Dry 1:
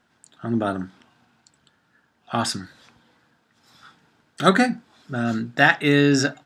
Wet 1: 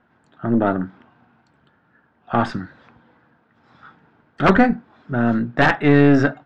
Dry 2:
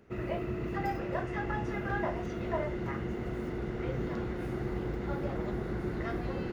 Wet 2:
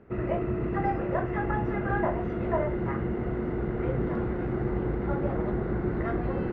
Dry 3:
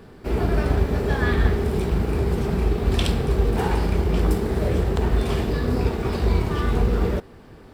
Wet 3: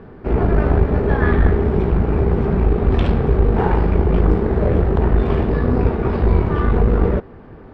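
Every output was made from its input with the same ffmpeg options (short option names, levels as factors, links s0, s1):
-af "aeval=exprs='(mod(1.88*val(0)+1,2)-1)/1.88':c=same,aeval=exprs='(tanh(4.47*val(0)+0.5)-tanh(0.5))/4.47':c=same,lowpass=1700,volume=2.51"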